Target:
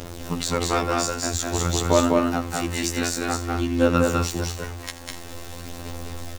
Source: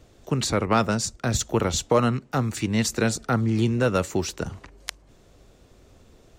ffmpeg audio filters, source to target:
-filter_complex "[0:a]aeval=exprs='val(0)+0.5*0.0266*sgn(val(0))':c=same,asplit=2[s0][s1];[s1]aecho=0:1:82:0.168[s2];[s0][s2]amix=inputs=2:normalize=0,aphaser=in_gain=1:out_gain=1:delay=3.7:decay=0.43:speed=0.51:type=sinusoidal,afftfilt=real='hypot(re,im)*cos(PI*b)':imag='0':win_size=2048:overlap=0.75,asplit=2[s3][s4];[s4]aecho=0:1:201.2|244.9:0.794|0.316[s5];[s3][s5]amix=inputs=2:normalize=0"

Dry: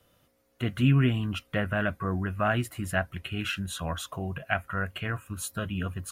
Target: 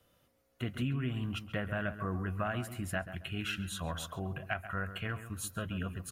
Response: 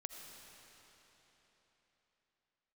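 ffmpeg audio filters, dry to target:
-filter_complex "[0:a]acompressor=threshold=0.0501:ratio=6,asplit=2[s0][s1];[s1]adelay=135,lowpass=f=1800:p=1,volume=0.299,asplit=2[s2][s3];[s3]adelay=135,lowpass=f=1800:p=1,volume=0.34,asplit=2[s4][s5];[s5]adelay=135,lowpass=f=1800:p=1,volume=0.34,asplit=2[s6][s7];[s7]adelay=135,lowpass=f=1800:p=1,volume=0.34[s8];[s0][s2][s4][s6][s8]amix=inputs=5:normalize=0,volume=0.596"

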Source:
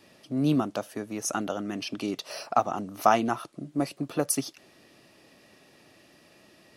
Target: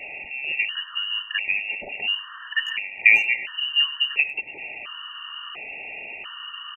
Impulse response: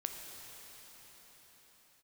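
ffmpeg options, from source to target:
-filter_complex "[0:a]aeval=exprs='val(0)+0.5*0.0251*sgn(val(0))':c=same,highshelf=f=2400:g=-10,lowpass=f=2600:t=q:w=0.5098,lowpass=f=2600:t=q:w=0.6013,lowpass=f=2600:t=q:w=0.9,lowpass=f=2600:t=q:w=2.563,afreqshift=-3100,asplit=2[s0][s1];[s1]adelay=100,highpass=300,lowpass=3400,asoftclip=type=hard:threshold=0.188,volume=0.224[s2];[s0][s2]amix=inputs=2:normalize=0,afftfilt=real='re*gt(sin(2*PI*0.72*pts/sr)*(1-2*mod(floor(b*sr/1024/930),2)),0)':imag='im*gt(sin(2*PI*0.72*pts/sr)*(1-2*mod(floor(b*sr/1024/930),2)),0)':win_size=1024:overlap=0.75,volume=2.24"

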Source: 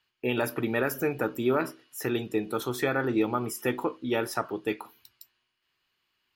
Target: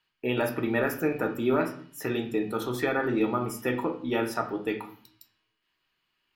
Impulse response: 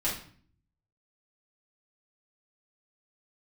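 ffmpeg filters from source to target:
-filter_complex "[0:a]asplit=2[s0][s1];[1:a]atrim=start_sample=2205,lowpass=4500[s2];[s1][s2]afir=irnorm=-1:irlink=0,volume=0.422[s3];[s0][s3]amix=inputs=2:normalize=0,volume=0.668"

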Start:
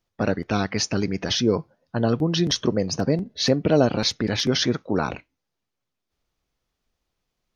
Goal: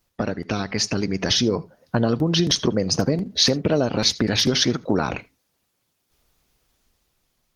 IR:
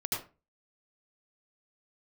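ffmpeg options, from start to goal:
-filter_complex "[0:a]acompressor=threshold=0.0316:ratio=5,highshelf=f=5600:g=9.5,dynaudnorm=f=310:g=7:m=1.68,asplit=2[s0][s1];[1:a]atrim=start_sample=2205,atrim=end_sample=3969[s2];[s1][s2]afir=irnorm=-1:irlink=0,volume=0.075[s3];[s0][s3]amix=inputs=2:normalize=0,volume=2.24" -ar 48000 -c:a libopus -b:a 20k

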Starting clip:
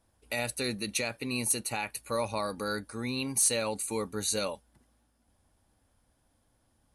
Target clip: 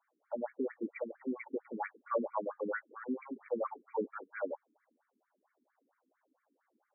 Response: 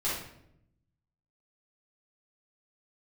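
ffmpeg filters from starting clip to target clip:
-filter_complex "[0:a]asettb=1/sr,asplit=3[s0][s1][s2];[s0]atrim=end=1.504[s3];[s1]atrim=start=1.5:end=2.28,asetpts=PTS-STARTPTS,afade=t=in:d=0.004:c=qsin,afade=t=out:st=0.776:d=0.004:c=qsin,equalizer=f=71:t=o:w=2.5:g=13.5[s4];[s2]atrim=start=2.276[s5];[s3][s4]acrossfade=d=0.004:c1=hsin:c2=qsin[s6];[s6][s5]acrossfade=d=0.004:c1=qsin:c2=hsin,afftfilt=real='re*between(b*sr/1024,290*pow(1700/290,0.5+0.5*sin(2*PI*4.4*pts/sr))/1.41,290*pow(1700/290,0.5+0.5*sin(2*PI*4.4*pts/sr))*1.41)':imag='im*between(b*sr/1024,290*pow(1700/290,0.5+0.5*sin(2*PI*4.4*pts/sr))/1.41,290*pow(1700/290,0.5+0.5*sin(2*PI*4.4*pts/sr))*1.41)':win_size=1024:overlap=0.75,volume=1.41"

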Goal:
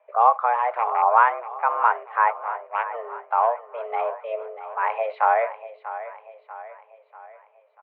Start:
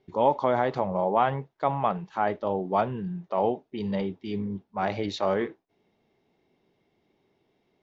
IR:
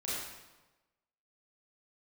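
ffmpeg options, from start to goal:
-filter_complex "[0:a]asettb=1/sr,asplit=3[s0][s1][s2];[s0]atrim=end=2.304[s3];[s1]atrim=start=2.3:end=2.94,asetpts=PTS-STARTPTS,afade=t=in:d=0.004:c=qsin,afade=t=out:st=0.636:d=0.004:c=qsin,aeval=exprs='0.299*(cos(1*acos(clip(val(0)/0.299,-1,1)))-cos(1*PI/2))+0.075*(cos(3*acos(clip(val(0)/0.299,-1,1)))-cos(3*PI/2))':c=same[s4];[s2]atrim=start=2.936[s5];[s3][s4]acrossfade=d=0.004:c1=hsin:c2=qsin[s6];[s6][s5]acrossfade=d=0.004:c1=qsin:c2=hsin,tremolo=f=0.96:d=0.4,asettb=1/sr,asplit=3[s7][s8][s9];[s7]atrim=end=0.534[s10];[s8]atrim=start=0.53:end=1.02,asetpts=PTS-STARTPTS,afade=t=in:d=0.004:c=qsin,afade=t=out:st=0.486:d=0.004:c=qsin,asoftclip=type=hard:threshold=0.0794[s11];[s9]atrim=start=1.016[s12];[s10][s11]acrossfade=d=0.004:c1=hsin:c2=qsin[s13];[s13][s12]acrossfade=d=0.004:c1=qsin:c2=hsin,asplit=2[s14][s15];[s15]aecho=0:1:641|1282|1923|2564|3205:0.211|0.104|0.0507|0.0249|0.0122[s16];[s14][s16]amix=inputs=2:normalize=0,highpass=f=290:t=q:w=0.5412,highpass=f=290:t=q:w=1.307,lowpass=f=2200:t=q:w=0.5176,lowpass=f=2200:t=q:w=0.7071,lowpass=f=2200:t=q:w=1.932,afreqshift=230,volume=2.37"

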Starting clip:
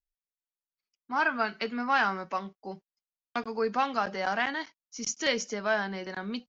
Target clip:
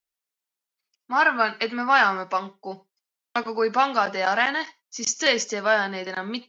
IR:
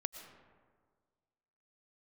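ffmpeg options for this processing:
-filter_complex "[0:a]highpass=f=330:p=1,asplit=2[s0][s1];[1:a]atrim=start_sample=2205,atrim=end_sample=6615,asetrate=66150,aresample=44100[s2];[s1][s2]afir=irnorm=-1:irlink=0,volume=1[s3];[s0][s3]amix=inputs=2:normalize=0,volume=1.58"

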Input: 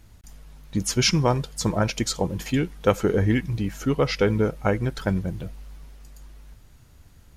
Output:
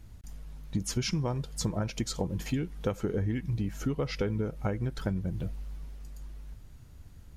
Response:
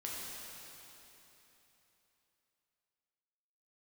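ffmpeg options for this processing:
-af "lowshelf=f=350:g=7,acompressor=threshold=0.0794:ratio=6,volume=0.562"

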